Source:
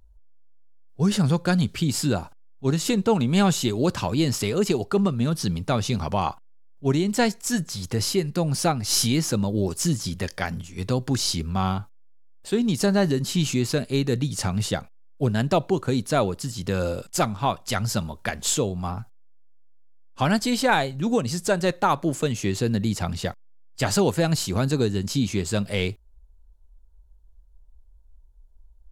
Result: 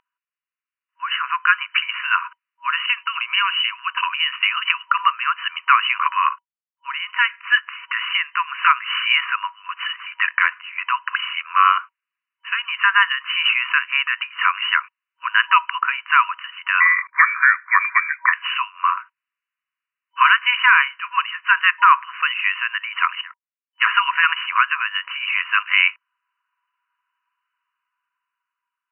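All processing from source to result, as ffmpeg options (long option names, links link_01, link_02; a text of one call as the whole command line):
ffmpeg -i in.wav -filter_complex "[0:a]asettb=1/sr,asplit=3[link_01][link_02][link_03];[link_01]atrim=end=2.864[link_04];[link_02]atrim=start=2.86:end=4.68,asetpts=PTS-STARTPTS,afade=type=in:duration=0.004:curve=qsin,afade=type=out:start_time=1.816:duration=0.004:curve=qsin,agate=range=-33dB:threshold=-23dB:ratio=3:release=100:detection=peak,acompressor=threshold=-25dB:ratio=12:attack=3.2:release=140:knee=1:detection=peak,lowpass=frequency=3600:width_type=q:width=3.4[link_05];[link_03]atrim=start=4.676[link_06];[link_04][link_05]acrossfade=duration=0.004:curve1=hsin:curve2=qsin[link_07];[link_07][link_06]acrossfade=duration=0.004:curve1=qsin:curve2=hsin,asettb=1/sr,asplit=3[link_08][link_09][link_10];[link_08]atrim=end=6.124[link_11];[link_09]atrim=start=6.12:end=7.38,asetpts=PTS-STARTPTS,afade=type=in:duration=0.004:curve=qsin,afade=type=out:start_time=1.256:duration=0.004:curve=qsin,agate=range=-33dB:threshold=-37dB:ratio=3:release=100:detection=peak,acompressor=threshold=-29dB:ratio=2:attack=3.2:release=140:knee=1:detection=peak[link_12];[link_10]atrim=start=7.376[link_13];[link_11][link_12]acrossfade=duration=0.004:curve1=hsin:curve2=qsin[link_14];[link_14][link_13]acrossfade=duration=0.004:curve1=qsin:curve2=hsin,asettb=1/sr,asplit=3[link_15][link_16][link_17];[link_15]atrim=end=16.804[link_18];[link_16]atrim=start=16.8:end=18.33,asetpts=PTS-STARTPTS,afade=type=in:duration=0.004:curve=qsin,afade=type=out:start_time=1.526:duration=0.004:curve=qsin,highpass=frequency=930:poles=1,lowpass=frequency=2100:width_type=q:width=0.5098,lowpass=frequency=2100:width_type=q:width=0.6013,lowpass=frequency=2100:width_type=q:width=0.9,lowpass=frequency=2100:width_type=q:width=2.563,afreqshift=-2500[link_19];[link_17]atrim=start=18.326[link_20];[link_18][link_19]acrossfade=duration=0.004:curve1=hsin:curve2=qsin[link_21];[link_21][link_20]acrossfade=duration=0.004:curve1=qsin:curve2=hsin,asettb=1/sr,asplit=3[link_22][link_23][link_24];[link_22]atrim=end=23.214[link_25];[link_23]atrim=start=23.21:end=23.81,asetpts=PTS-STARTPTS,afade=type=in:duration=0.004:curve=qsin,afade=type=out:start_time=0.596:duration=0.004:curve=qsin,agate=range=-17dB:threshold=-36dB:ratio=16:release=100:detection=peak,acompressor=threshold=-47dB:ratio=3:attack=3.2:release=140:knee=1:detection=peak[link_26];[link_24]atrim=start=23.806[link_27];[link_25][link_26]acrossfade=duration=0.004:curve1=hsin:curve2=qsin[link_28];[link_28][link_27]acrossfade=duration=0.004:curve1=qsin:curve2=hsin,afftfilt=real='re*between(b*sr/4096,960,3000)':imag='im*between(b*sr/4096,960,3000)':win_size=4096:overlap=0.75,dynaudnorm=framelen=390:gausssize=7:maxgain=9.5dB,alimiter=level_in=11dB:limit=-1dB:release=50:level=0:latency=1,volume=-1dB" out.wav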